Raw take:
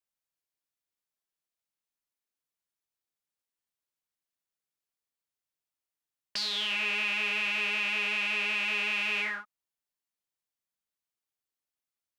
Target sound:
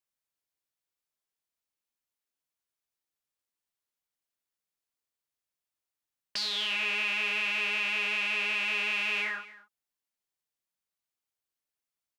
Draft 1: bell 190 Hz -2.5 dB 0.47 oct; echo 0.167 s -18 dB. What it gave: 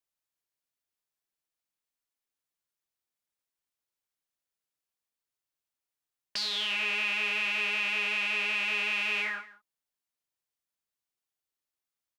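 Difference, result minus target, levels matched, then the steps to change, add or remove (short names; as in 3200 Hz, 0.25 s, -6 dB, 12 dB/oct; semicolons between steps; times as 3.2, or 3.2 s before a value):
echo 66 ms early
change: echo 0.233 s -18 dB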